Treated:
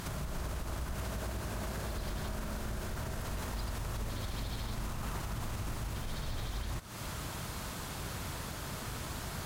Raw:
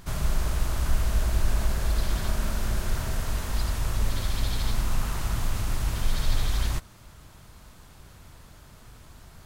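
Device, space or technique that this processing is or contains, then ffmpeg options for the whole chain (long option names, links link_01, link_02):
podcast mastering chain: -filter_complex "[0:a]asettb=1/sr,asplit=3[link_01][link_02][link_03];[link_01]atrim=end=0.934[link_04];[link_02]atrim=start=0.93:end=1.96,asetpts=PTS-STARTPTS,afade=type=in:duration=0.004:curve=qsin,afade=type=out:start_time=1.026:duration=0.004:curve=qsin,highpass=65[link_05];[link_03]atrim=start=1.956[link_06];[link_04][link_05]acrossfade=duration=0.004:curve1=hsin:curve2=qsin[link_07];[link_07][link_06]acrossfade=duration=0.004:curve1=qsin:curve2=hsin,highpass=frequency=100:poles=1,deesser=0.95,acompressor=threshold=-43dB:ratio=3,alimiter=level_in=17dB:limit=-24dB:level=0:latency=1:release=156,volume=-17dB,volume=12.5dB" -ar 44100 -c:a libmp3lame -b:a 112k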